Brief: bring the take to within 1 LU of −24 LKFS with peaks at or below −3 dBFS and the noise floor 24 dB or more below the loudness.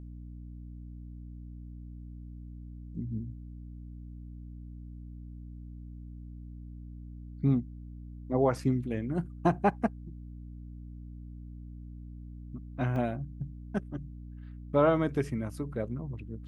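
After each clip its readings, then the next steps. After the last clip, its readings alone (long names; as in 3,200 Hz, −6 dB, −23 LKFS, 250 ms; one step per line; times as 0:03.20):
number of dropouts 1; longest dropout 2.1 ms; mains hum 60 Hz; hum harmonics up to 300 Hz; level of the hum −41 dBFS; integrated loudness −31.5 LKFS; sample peak −12.5 dBFS; target loudness −24.0 LKFS
→ repair the gap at 0:12.96, 2.1 ms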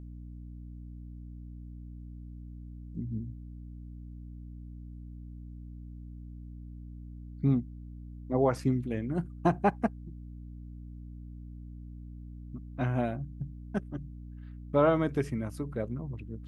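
number of dropouts 0; mains hum 60 Hz; hum harmonics up to 300 Hz; level of the hum −41 dBFS
→ hum removal 60 Hz, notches 5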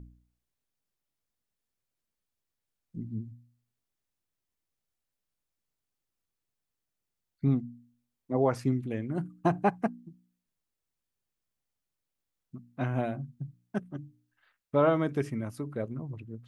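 mains hum none found; integrated loudness −31.5 LKFS; sample peak −12.5 dBFS; target loudness −24.0 LKFS
→ level +7.5 dB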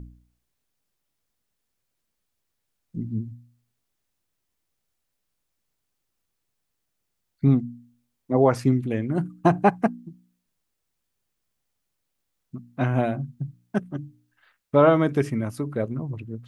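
integrated loudness −24.0 LKFS; sample peak −5.0 dBFS; background noise floor −79 dBFS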